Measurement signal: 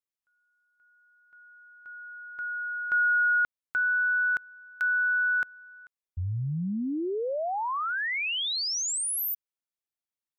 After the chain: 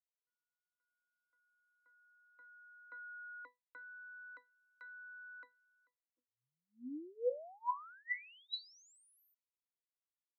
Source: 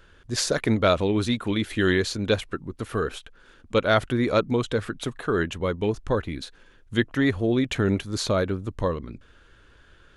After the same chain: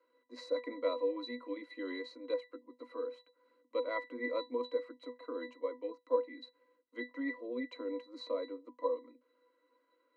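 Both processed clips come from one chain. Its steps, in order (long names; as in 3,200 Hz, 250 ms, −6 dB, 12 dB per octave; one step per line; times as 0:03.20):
Chebyshev high-pass filter 290 Hz, order 6
resonances in every octave B, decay 0.18 s
level +3.5 dB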